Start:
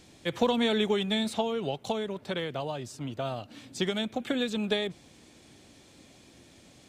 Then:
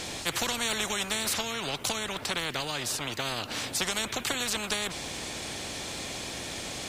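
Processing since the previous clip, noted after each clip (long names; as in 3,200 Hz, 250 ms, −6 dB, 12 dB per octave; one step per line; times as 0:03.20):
every bin compressed towards the loudest bin 4 to 1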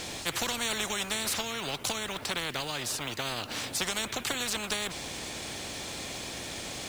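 floating-point word with a short mantissa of 2 bits
level −1.5 dB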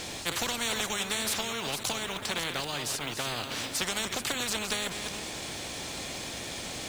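delay that plays each chunk backwards 306 ms, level −7.5 dB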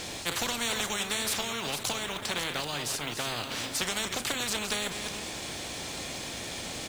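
double-tracking delay 34 ms −13.5 dB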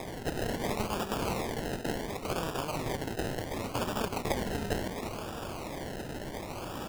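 sample-and-hold swept by an LFO 30×, swing 60% 0.7 Hz
level −1 dB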